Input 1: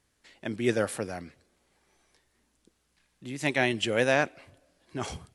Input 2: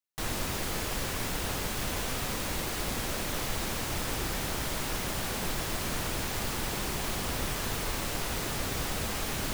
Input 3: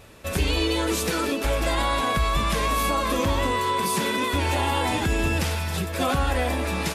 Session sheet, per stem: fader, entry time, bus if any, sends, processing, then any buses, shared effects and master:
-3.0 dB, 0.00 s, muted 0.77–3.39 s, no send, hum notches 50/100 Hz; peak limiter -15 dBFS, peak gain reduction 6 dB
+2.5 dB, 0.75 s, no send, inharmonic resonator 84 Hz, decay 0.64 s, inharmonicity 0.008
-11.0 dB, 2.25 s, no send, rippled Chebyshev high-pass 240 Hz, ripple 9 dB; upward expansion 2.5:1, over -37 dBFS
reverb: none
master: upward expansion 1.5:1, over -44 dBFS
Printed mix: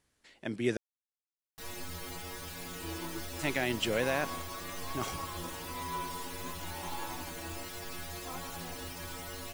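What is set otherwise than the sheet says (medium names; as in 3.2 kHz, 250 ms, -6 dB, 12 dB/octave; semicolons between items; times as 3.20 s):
stem 2: entry 0.75 s -> 1.40 s; master: missing upward expansion 1.5:1, over -44 dBFS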